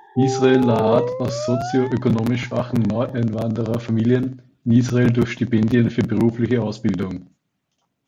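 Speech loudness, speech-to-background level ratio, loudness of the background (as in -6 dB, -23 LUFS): -20.0 LUFS, 5.5 dB, -25.5 LUFS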